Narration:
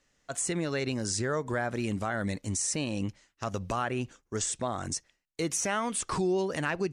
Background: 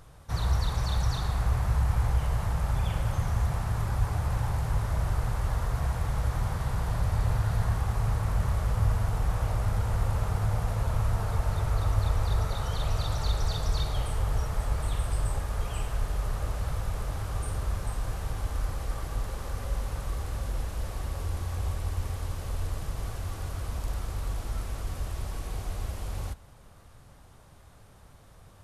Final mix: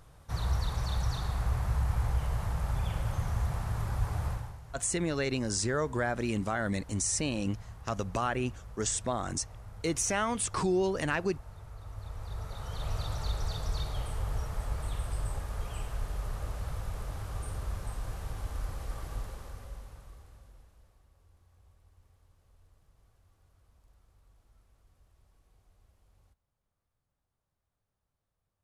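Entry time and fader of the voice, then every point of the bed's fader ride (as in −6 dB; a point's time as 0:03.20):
4.45 s, 0.0 dB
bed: 0:04.29 −4 dB
0:04.60 −19.5 dB
0:11.78 −19.5 dB
0:12.92 −5.5 dB
0:19.17 −5.5 dB
0:21.07 −31.5 dB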